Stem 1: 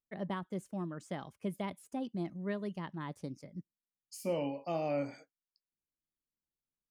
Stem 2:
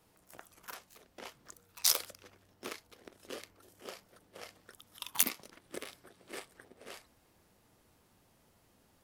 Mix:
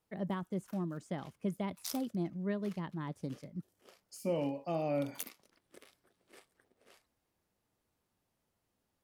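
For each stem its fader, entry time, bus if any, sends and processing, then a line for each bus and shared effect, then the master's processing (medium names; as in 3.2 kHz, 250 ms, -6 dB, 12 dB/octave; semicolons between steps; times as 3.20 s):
-2.5 dB, 0.00 s, no send, bass shelf 490 Hz +5.5 dB
-14.5 dB, 0.00 s, no send, none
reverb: none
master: none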